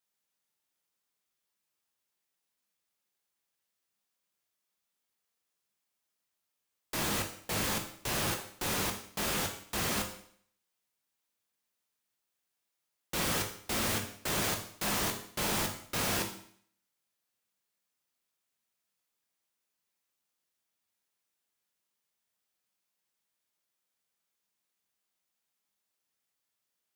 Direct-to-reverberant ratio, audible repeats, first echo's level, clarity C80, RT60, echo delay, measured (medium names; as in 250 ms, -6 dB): 3.0 dB, no echo, no echo, 12.0 dB, 0.60 s, no echo